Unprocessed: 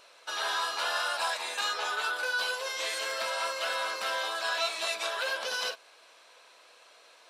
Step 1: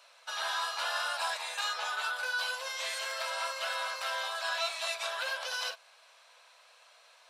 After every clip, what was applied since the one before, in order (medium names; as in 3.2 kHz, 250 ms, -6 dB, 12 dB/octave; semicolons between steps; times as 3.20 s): inverse Chebyshev high-pass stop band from 280 Hz, stop band 40 dB; trim -2.5 dB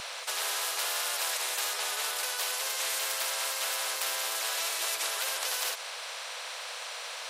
spectrum-flattening compressor 4:1; trim +3 dB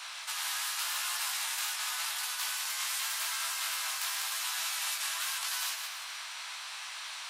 backward echo that repeats 147 ms, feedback 47%, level -7 dB; inverse Chebyshev high-pass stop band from 340 Hz, stop band 50 dB; chorus 0.89 Hz, delay 16 ms, depth 5.6 ms